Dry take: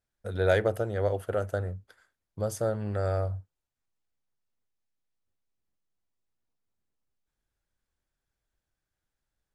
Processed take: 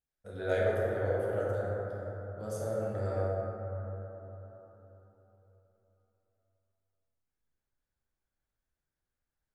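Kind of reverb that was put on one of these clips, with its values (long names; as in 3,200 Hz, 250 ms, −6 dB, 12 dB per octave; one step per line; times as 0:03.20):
dense smooth reverb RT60 4 s, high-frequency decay 0.25×, DRR −7 dB
level −12 dB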